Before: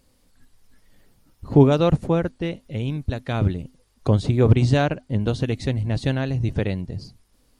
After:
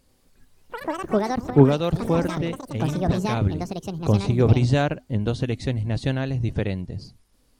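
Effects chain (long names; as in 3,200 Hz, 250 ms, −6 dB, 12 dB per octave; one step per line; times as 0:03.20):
delay with pitch and tempo change per echo 91 ms, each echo +7 semitones, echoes 3, each echo −6 dB
0:01.50–0:01.96: multiband upward and downward expander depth 100%
level −1.5 dB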